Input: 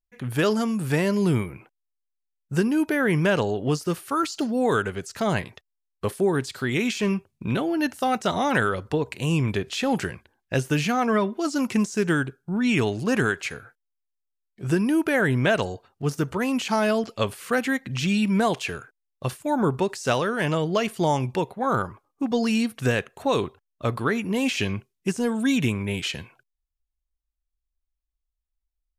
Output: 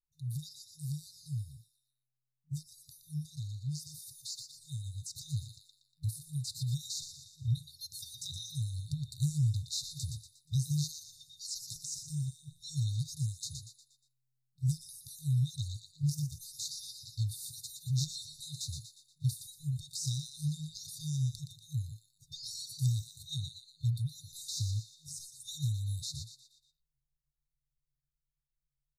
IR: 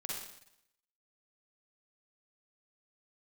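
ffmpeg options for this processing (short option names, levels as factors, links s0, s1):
-filter_complex "[0:a]equalizer=f=110:w=4.9:g=5.5,asplit=6[s0][s1][s2][s3][s4][s5];[s1]adelay=119,afreqshift=130,volume=0.422[s6];[s2]adelay=238,afreqshift=260,volume=0.178[s7];[s3]adelay=357,afreqshift=390,volume=0.0741[s8];[s4]adelay=476,afreqshift=520,volume=0.0313[s9];[s5]adelay=595,afreqshift=650,volume=0.0132[s10];[s0][s6][s7][s8][s9][s10]amix=inputs=6:normalize=0,acompressor=threshold=0.0794:ratio=3,afftfilt=real='re*(1-between(b*sr/4096,160,3600))':imag='im*(1-between(b*sr/4096,160,3600))':win_size=4096:overlap=0.75,dynaudnorm=f=780:g=13:m=2.24,volume=0.398"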